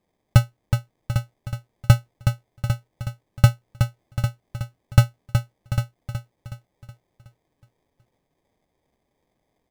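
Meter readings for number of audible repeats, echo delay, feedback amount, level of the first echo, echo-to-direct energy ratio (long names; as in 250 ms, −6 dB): 5, 370 ms, 47%, −7.0 dB, −6.0 dB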